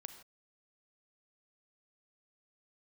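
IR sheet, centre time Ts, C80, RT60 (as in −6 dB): 13 ms, 11.0 dB, non-exponential decay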